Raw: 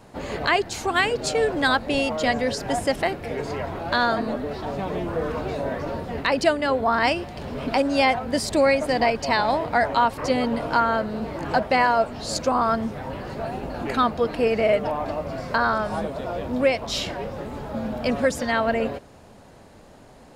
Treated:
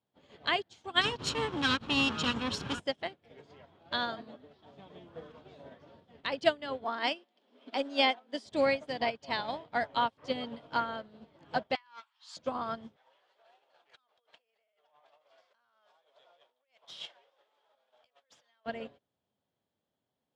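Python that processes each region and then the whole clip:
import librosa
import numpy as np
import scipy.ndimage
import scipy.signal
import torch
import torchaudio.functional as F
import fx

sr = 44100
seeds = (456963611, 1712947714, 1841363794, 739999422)

y = fx.chain(x, sr, fx.lower_of_two(delay_ms=0.73),
    fx.low_shelf(hz=80.0, db=8.5),
    fx.env_flatten(amount_pct=70), at=(1.01, 2.8))
y = fx.chain(y, sr, fx.steep_highpass(hz=220.0, slope=48),
    fx.quant_float(bits=6), at=(6.84, 8.46))
y = fx.chain(y, sr, fx.ellip_highpass(hz=960.0, order=4, stop_db=50),
    fx.over_compress(threshold_db=-28.0, ratio=-1.0),
    fx.doppler_dist(depth_ms=0.35), at=(11.75, 12.37))
y = fx.chain(y, sr, fx.over_compress(threshold_db=-30.0, ratio=-1.0),
    fx.bessel_highpass(hz=750.0, order=6),
    fx.running_max(window=3), at=(12.96, 18.66))
y = scipy.signal.sosfilt(scipy.signal.cheby1(2, 1.0, [110.0, 6000.0], 'bandpass', fs=sr, output='sos'), y)
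y = fx.peak_eq(y, sr, hz=3300.0, db=12.5, octaves=0.29)
y = fx.upward_expand(y, sr, threshold_db=-37.0, expansion=2.5)
y = y * librosa.db_to_amplitude(-4.5)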